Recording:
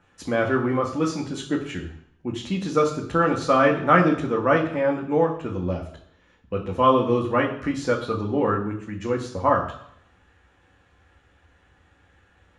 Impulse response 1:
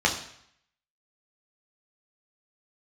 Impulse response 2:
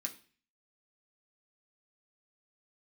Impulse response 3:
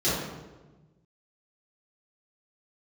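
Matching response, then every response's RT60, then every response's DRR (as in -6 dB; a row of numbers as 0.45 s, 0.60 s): 1; 0.65 s, 0.40 s, 1.2 s; -1.0 dB, 0.5 dB, -12.0 dB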